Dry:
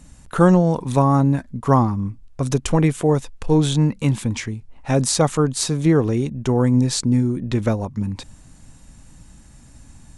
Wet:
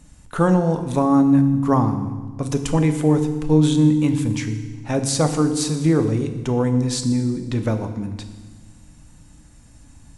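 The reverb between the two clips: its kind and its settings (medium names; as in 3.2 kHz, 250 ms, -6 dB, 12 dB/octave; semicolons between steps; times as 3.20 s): FDN reverb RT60 1.3 s, low-frequency decay 1.5×, high-frequency decay 1×, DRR 6.5 dB; trim -3 dB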